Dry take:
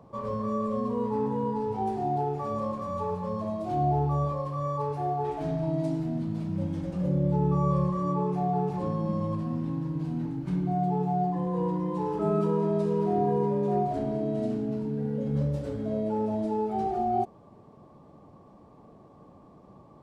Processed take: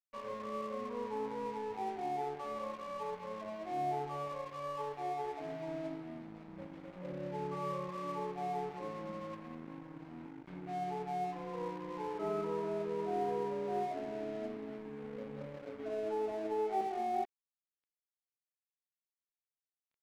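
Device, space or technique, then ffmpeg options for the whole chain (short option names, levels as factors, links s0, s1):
pocket radio on a weak battery: -filter_complex "[0:a]asettb=1/sr,asplit=3[s0][s1][s2];[s0]atrim=end=15.784[s3];[s1]atrim=start=15.78:end=16.81,asetpts=PTS-STARTPTS,afade=t=in:d=0.004:c=qsin,afade=t=out:st=1.026:d=0.004:c=qsin,aecho=1:1:2.7:0.96,atrim=end_sample=45423[s4];[s2]atrim=start=16.806[s5];[s3][s4]acrossfade=d=0.004:c1=hsin:c2=qsin[s6];[s6][s5]acrossfade=d=0.004:c1=qsin:c2=hsin,highpass=330,lowpass=3000,aeval=exprs='sgn(val(0))*max(abs(val(0))-0.00562,0)':c=same,equalizer=f=2200:t=o:w=0.44:g=4.5,volume=0.473"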